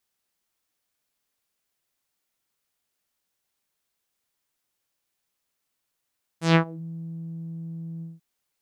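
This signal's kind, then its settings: synth note saw E3 12 dB/octave, low-pass 180 Hz, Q 1.9, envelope 6 oct, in 0.39 s, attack 142 ms, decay 0.09 s, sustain -23.5 dB, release 0.18 s, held 1.61 s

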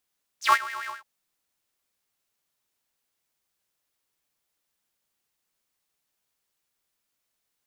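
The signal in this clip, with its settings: synth patch with filter wobble B2, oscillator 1 square, interval -12 st, filter highpass, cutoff 1.1 kHz, Q 10, filter envelope 2.5 oct, filter decay 0.08 s, filter sustain 15%, attack 121 ms, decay 0.05 s, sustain -17 dB, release 0.15 s, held 0.47 s, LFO 7.5 Hz, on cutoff 0.5 oct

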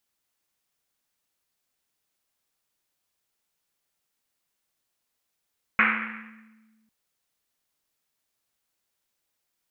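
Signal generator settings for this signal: Risset drum, pitch 220 Hz, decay 1.81 s, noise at 1.8 kHz, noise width 1.3 kHz, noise 75%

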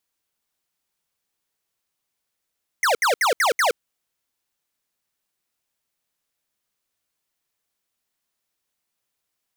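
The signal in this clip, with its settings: burst of laser zaps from 2.2 kHz, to 420 Hz, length 0.12 s square, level -18.5 dB, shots 5, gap 0.07 s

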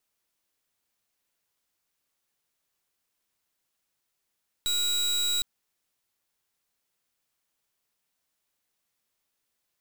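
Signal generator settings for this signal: pulse 3.88 kHz, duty 31% -26.5 dBFS 0.76 s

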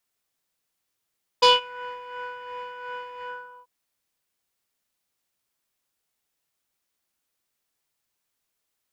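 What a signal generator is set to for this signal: synth patch with tremolo B5, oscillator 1 square, interval +7 st, detune 4 cents, sub -2 dB, noise -5.5 dB, filter lowpass, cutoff 1.1 kHz, Q 3.4, filter envelope 2 oct, filter decay 0.29 s, attack 11 ms, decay 0.17 s, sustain -23 dB, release 0.44 s, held 1.80 s, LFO 2.8 Hz, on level 6 dB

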